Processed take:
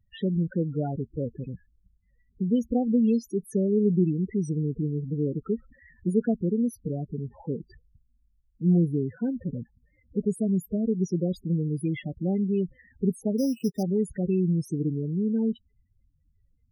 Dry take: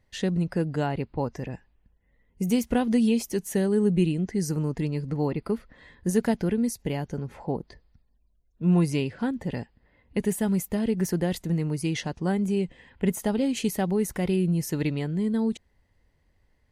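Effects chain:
dynamic equaliser 890 Hz, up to −5 dB, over −46 dBFS, Q 2.5
spectral peaks only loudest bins 8
0:13.38–0:13.83: bad sample-rate conversion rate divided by 8×, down filtered, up hold

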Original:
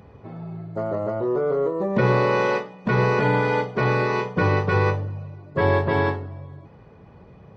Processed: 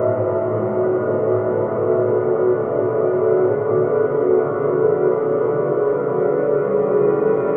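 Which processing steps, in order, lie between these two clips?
extreme stretch with random phases 14×, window 1.00 s, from 0:01.11
Butterworth band-reject 4,800 Hz, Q 0.9
level +5.5 dB

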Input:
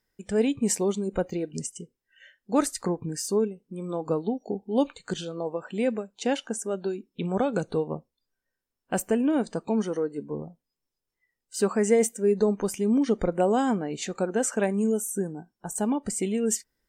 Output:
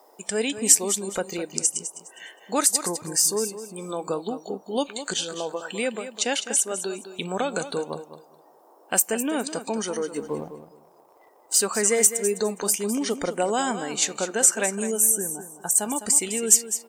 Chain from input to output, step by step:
spectral tilt +4 dB per octave
noise in a band 320–990 Hz −62 dBFS
in parallel at 0 dB: downward compressor, threshold −34 dBFS, peak gain reduction 21 dB
0:10.14–0:11.58: on the sum: leveller curve on the samples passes 1
on a send: repeating echo 206 ms, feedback 23%, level −11.5 dB

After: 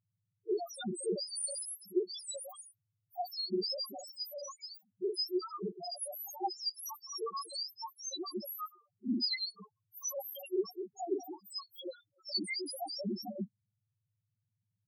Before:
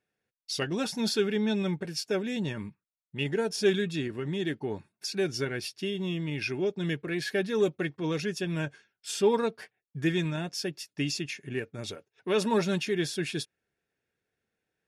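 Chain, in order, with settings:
frequency axis turned over on the octave scale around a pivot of 1,400 Hz
spectral peaks only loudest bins 1
level +6 dB

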